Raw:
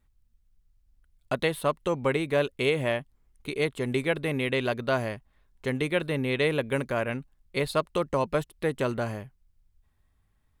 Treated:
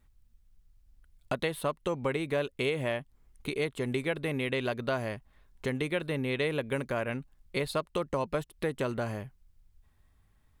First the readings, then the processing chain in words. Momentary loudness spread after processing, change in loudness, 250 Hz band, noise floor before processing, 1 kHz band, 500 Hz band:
7 LU, -4.5 dB, -3.5 dB, -69 dBFS, -4.5 dB, -4.5 dB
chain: compressor 2:1, threshold -37 dBFS, peak gain reduction 10 dB; gain +3.5 dB

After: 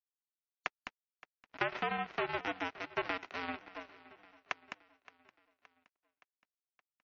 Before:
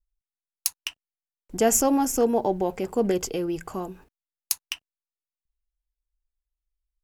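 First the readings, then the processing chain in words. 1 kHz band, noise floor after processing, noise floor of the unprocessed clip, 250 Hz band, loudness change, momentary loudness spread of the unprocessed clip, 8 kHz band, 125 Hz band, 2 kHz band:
-9.0 dB, under -85 dBFS, under -85 dBFS, -20.5 dB, -13.5 dB, 16 LU, -38.0 dB, -14.5 dB, +1.5 dB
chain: spectral whitening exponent 0.1; mistuned SSB -85 Hz 360–2700 Hz; sample leveller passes 1; compressor 10:1, threshold -24 dBFS, peak gain reduction 7 dB; power-law curve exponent 2; air absorption 51 m; on a send: feedback echo 0.57 s, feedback 55%, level -20 dB; on the sum: spectral gate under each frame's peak -30 dB strong

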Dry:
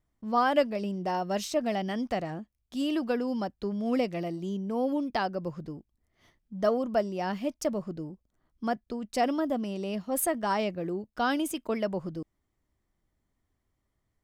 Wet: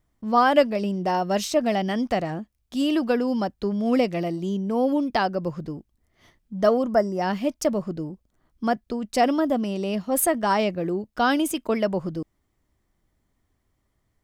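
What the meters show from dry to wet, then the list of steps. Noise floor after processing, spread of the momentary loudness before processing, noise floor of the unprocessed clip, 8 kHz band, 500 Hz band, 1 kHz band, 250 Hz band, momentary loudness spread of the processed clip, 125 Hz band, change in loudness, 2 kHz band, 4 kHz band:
-73 dBFS, 11 LU, -79 dBFS, +6.5 dB, +6.5 dB, +6.5 dB, +6.5 dB, 11 LU, +6.5 dB, +6.5 dB, +6.5 dB, +6.5 dB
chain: spectral gain 6.92–7.21, 2200–4800 Hz -15 dB; gain +6.5 dB

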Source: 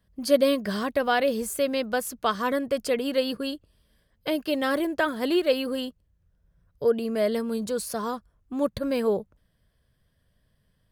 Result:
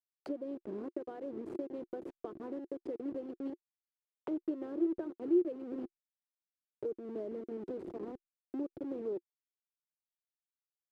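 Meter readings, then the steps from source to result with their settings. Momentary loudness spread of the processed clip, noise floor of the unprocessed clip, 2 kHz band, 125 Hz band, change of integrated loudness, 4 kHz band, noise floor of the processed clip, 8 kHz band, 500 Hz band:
11 LU, -70 dBFS, under -30 dB, n/a, -13.0 dB, under -35 dB, under -85 dBFS, under -35 dB, -14.5 dB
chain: level-crossing sampler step -24.5 dBFS; compressor 6:1, threshold -30 dBFS, peak gain reduction 15 dB; auto-wah 350–1700 Hz, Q 6.6, down, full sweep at -36.5 dBFS; gain +6.5 dB

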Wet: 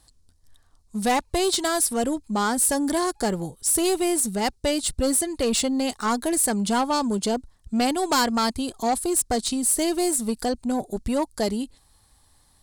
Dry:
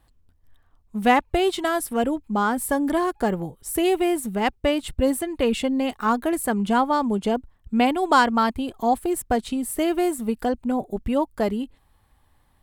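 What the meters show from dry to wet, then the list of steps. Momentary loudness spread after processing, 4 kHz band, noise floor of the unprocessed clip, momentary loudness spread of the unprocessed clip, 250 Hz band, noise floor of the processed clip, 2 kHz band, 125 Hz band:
6 LU, +4.0 dB, -62 dBFS, 6 LU, -1.5 dB, -60 dBFS, -3.5 dB, -1.0 dB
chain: band shelf 6500 Hz +15.5 dB; soft clip -16 dBFS, distortion -12 dB

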